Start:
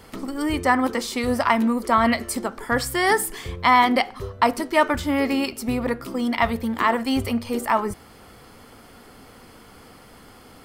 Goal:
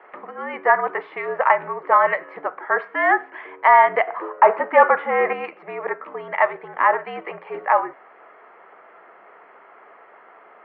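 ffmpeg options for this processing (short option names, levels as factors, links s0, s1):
-filter_complex "[0:a]asettb=1/sr,asplit=3[s0][s1][s2];[s0]atrim=end=4.074[s3];[s1]atrim=start=4.07:end=5.33,asetpts=PTS-STARTPTS,afade=t=in:d=0.004:c=qsin,afade=t=out:st=1.256:d=0.004:c=qsin,asplit=2[s4][s5];[s5]highpass=f=720:p=1,volume=7.94,asoftclip=type=tanh:threshold=0.668[s6];[s4][s6]amix=inputs=2:normalize=0,lowpass=f=1100:p=1,volume=0.501[s7];[s2]atrim=start=5.326[s8];[s3][s7]acrossfade=d=0.004:c1=hsin:c2=qsin[s9];[s9][s8]acrossfade=d=0.004:c1=qsin:c2=hsin,highpass=f=550:t=q:w=0.5412,highpass=f=550:t=q:w=1.307,lowpass=f=2200:t=q:w=0.5176,lowpass=f=2200:t=q:w=0.7071,lowpass=f=2200:t=q:w=1.932,afreqshift=-62,volume=1.58"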